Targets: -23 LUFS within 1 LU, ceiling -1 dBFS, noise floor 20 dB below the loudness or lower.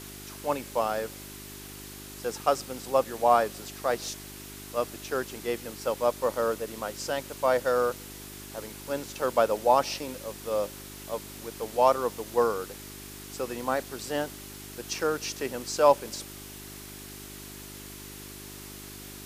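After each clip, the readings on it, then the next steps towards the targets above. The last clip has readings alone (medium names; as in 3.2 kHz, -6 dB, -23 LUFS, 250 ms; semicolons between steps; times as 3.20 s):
hum 50 Hz; highest harmonic 400 Hz; hum level -44 dBFS; noise floor -44 dBFS; noise floor target -49 dBFS; loudness -29.0 LUFS; peak level -7.0 dBFS; loudness target -23.0 LUFS
-> de-hum 50 Hz, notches 8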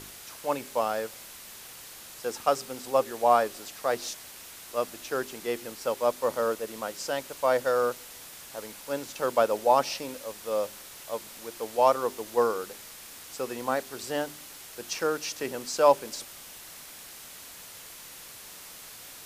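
hum not found; noise floor -46 dBFS; noise floor target -49 dBFS
-> noise reduction 6 dB, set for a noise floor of -46 dBFS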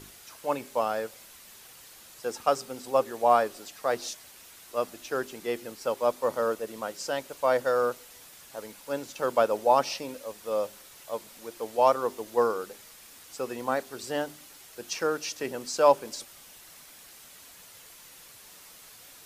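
noise floor -51 dBFS; loudness -29.0 LUFS; peak level -7.5 dBFS; loudness target -23.0 LUFS
-> trim +6 dB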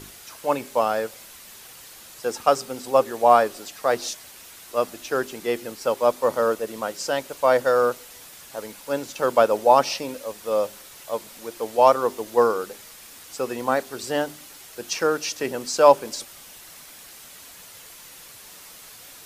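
loudness -23.0 LUFS; peak level -1.5 dBFS; noise floor -45 dBFS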